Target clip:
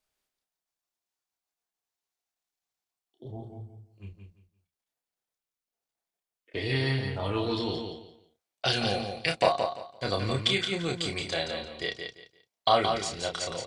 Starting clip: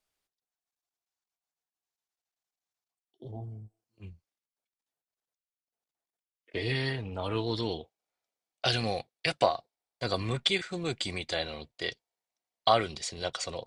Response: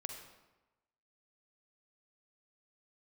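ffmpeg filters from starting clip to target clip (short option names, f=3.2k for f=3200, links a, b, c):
-filter_complex "[0:a]asplit=2[a][b];[b]adelay=30,volume=-5dB[c];[a][c]amix=inputs=2:normalize=0,asplit=2[d][e];[e]aecho=0:1:172|344|516:0.501|0.12|0.0289[f];[d][f]amix=inputs=2:normalize=0"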